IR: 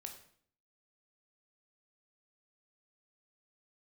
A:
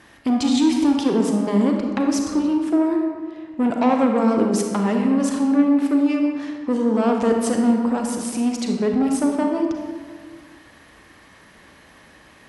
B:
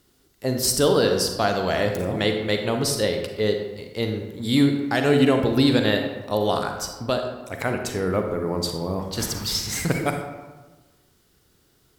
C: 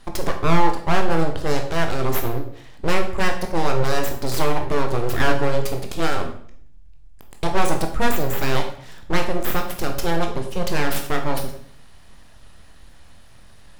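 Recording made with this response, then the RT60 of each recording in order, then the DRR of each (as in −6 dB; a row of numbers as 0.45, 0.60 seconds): C; 1.7, 1.3, 0.60 seconds; 2.0, 4.5, 3.5 decibels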